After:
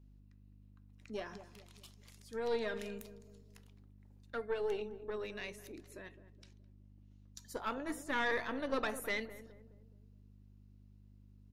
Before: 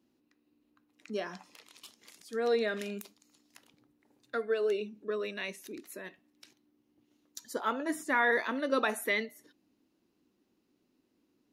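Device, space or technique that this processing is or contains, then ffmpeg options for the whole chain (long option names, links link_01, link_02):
valve amplifier with mains hum: -filter_complex "[0:a]asettb=1/sr,asplit=3[link_01][link_02][link_03];[link_01]atrim=end=5.814[link_04];[link_02]atrim=start=5.81:end=7.39,asetpts=PTS-STARTPTS,afade=type=in:duration=0.004:curve=qsin,afade=type=out:start_time=1.576:duration=0.004:curve=qsin,lowpass=8400[link_05];[link_03]atrim=start=7.386[link_06];[link_04][link_05]acrossfade=duration=0.004:curve1=hsin:curve2=qsin[link_07];[link_07][link_06]acrossfade=duration=0.004:curve1=qsin:curve2=hsin,aeval=exprs='(tanh(12.6*val(0)+0.6)-tanh(0.6))/12.6':channel_layout=same,aeval=exprs='val(0)+0.00178*(sin(2*PI*50*n/s)+sin(2*PI*2*50*n/s)/2+sin(2*PI*3*50*n/s)/3+sin(2*PI*4*50*n/s)/4+sin(2*PI*5*50*n/s)/5)':channel_layout=same,asplit=2[link_08][link_09];[link_09]adelay=210,lowpass=frequency=810:poles=1,volume=-11.5dB,asplit=2[link_10][link_11];[link_11]adelay=210,lowpass=frequency=810:poles=1,volume=0.48,asplit=2[link_12][link_13];[link_13]adelay=210,lowpass=frequency=810:poles=1,volume=0.48,asplit=2[link_14][link_15];[link_15]adelay=210,lowpass=frequency=810:poles=1,volume=0.48,asplit=2[link_16][link_17];[link_17]adelay=210,lowpass=frequency=810:poles=1,volume=0.48[link_18];[link_08][link_10][link_12][link_14][link_16][link_18]amix=inputs=6:normalize=0,volume=-3.5dB"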